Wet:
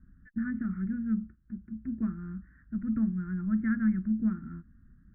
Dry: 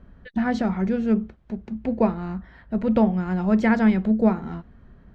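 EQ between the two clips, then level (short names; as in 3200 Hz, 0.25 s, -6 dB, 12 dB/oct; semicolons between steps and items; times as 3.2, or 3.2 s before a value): inverse Chebyshev band-stop 400–960 Hz, stop band 40 dB; steep low-pass 1700 Hz 48 dB/oct; band shelf 570 Hz +14 dB; -8.0 dB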